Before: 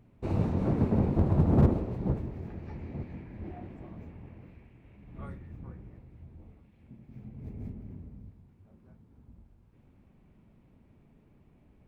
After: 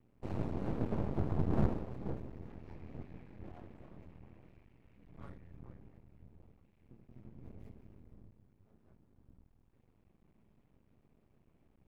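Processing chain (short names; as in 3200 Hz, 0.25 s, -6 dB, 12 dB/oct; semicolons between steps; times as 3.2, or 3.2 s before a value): 7.59–8.12 tilt shelf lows -4.5 dB, about 1100 Hz; half-wave rectifier; gain -5 dB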